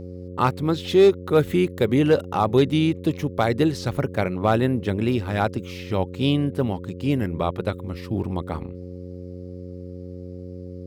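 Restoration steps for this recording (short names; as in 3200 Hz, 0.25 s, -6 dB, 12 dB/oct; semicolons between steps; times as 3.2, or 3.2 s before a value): clip repair -8.5 dBFS; de-hum 90.1 Hz, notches 6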